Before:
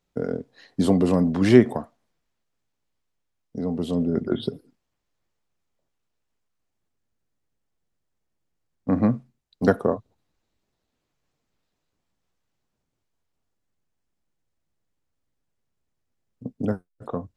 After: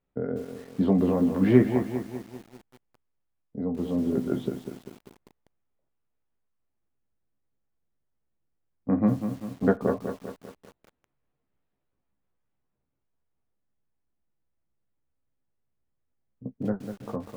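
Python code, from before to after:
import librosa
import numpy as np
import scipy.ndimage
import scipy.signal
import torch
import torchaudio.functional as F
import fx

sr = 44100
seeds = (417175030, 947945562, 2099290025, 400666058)

y = fx.air_absorb(x, sr, metres=450.0)
y = fx.doubler(y, sr, ms=15.0, db=-5.5)
y = fx.echo_crushed(y, sr, ms=197, feedback_pct=55, bits=7, wet_db=-8.0)
y = y * librosa.db_to_amplitude(-3.5)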